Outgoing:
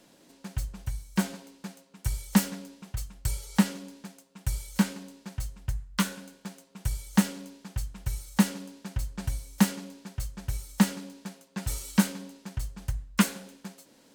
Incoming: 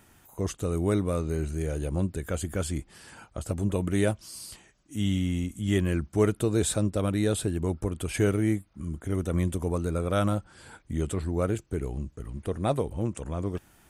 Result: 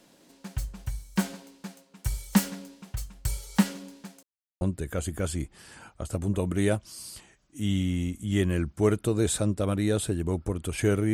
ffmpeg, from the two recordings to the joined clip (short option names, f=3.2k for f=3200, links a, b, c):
-filter_complex "[0:a]apad=whole_dur=11.13,atrim=end=11.13,asplit=2[a][b];[a]atrim=end=4.23,asetpts=PTS-STARTPTS,afade=t=out:st=4.226:d=0.004:c=hsin[c];[b]atrim=start=4.23:end=4.61,asetpts=PTS-STARTPTS,volume=0[d];[1:a]atrim=start=1.97:end=8.49,asetpts=PTS-STARTPTS,afade=t=in:d=0.004:c=hsin[e];[c][d][e]concat=n=3:v=0:a=1"